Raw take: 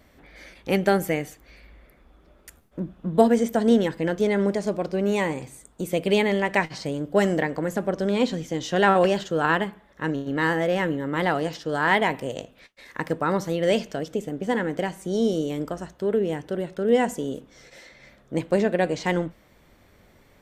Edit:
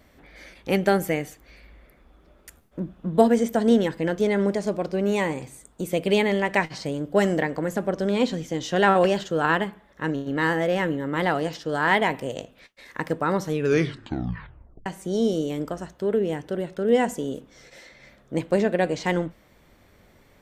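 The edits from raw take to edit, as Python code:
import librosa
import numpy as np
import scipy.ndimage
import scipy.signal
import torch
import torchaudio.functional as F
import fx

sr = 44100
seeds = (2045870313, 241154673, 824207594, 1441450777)

y = fx.edit(x, sr, fx.tape_stop(start_s=13.41, length_s=1.45), tone=tone)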